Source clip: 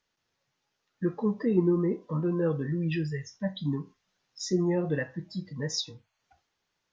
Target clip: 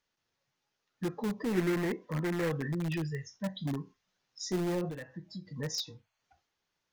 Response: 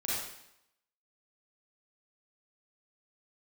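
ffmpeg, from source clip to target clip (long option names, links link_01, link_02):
-filter_complex "[0:a]asplit=2[link_01][link_02];[link_02]aeval=exprs='(mod(14.1*val(0)+1,2)-1)/14.1':channel_layout=same,volume=-9dB[link_03];[link_01][link_03]amix=inputs=2:normalize=0,asettb=1/sr,asplit=3[link_04][link_05][link_06];[link_04]atrim=end=1.534[link_07];[link_05]atrim=start=1.53:end=2.68,asetpts=PTS-STARTPTS,afade=type=in:duration=0.004:curve=qsin,afade=type=out:start_time=1.146:duration=0.004:curve=qsin,equalizer=frequency=1900:width_type=o:width=0.62:gain=11[link_08];[link_06]atrim=start=2.676[link_09];[link_07][link_08]acrossfade=duration=0.004:curve1=hsin:curve2=qsin[link_10];[link_10][link_09]acrossfade=duration=0.004:curve1=qsin:curve2=hsin,asettb=1/sr,asplit=3[link_11][link_12][link_13];[link_11]atrim=end=4.894[link_14];[link_12]atrim=start=4.89:end=5.47,asetpts=PTS-STARTPTS,afade=type=in:duration=0.004:curve=qsin,afade=type=out:start_time=0.576:duration=0.004:curve=qsin,acompressor=threshold=-33dB:ratio=6[link_15];[link_13]atrim=start=5.466[link_16];[link_14][link_15]acrossfade=duration=0.004:curve1=hsin:curve2=qsin[link_17];[link_17][link_16]acrossfade=duration=0.004:curve1=qsin:curve2=hsin,volume=-6dB"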